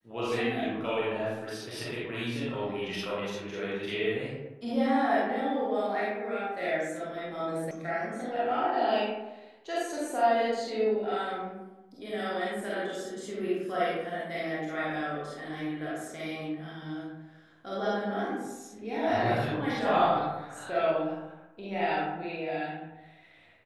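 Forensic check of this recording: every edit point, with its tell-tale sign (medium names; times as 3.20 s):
7.71 s: sound stops dead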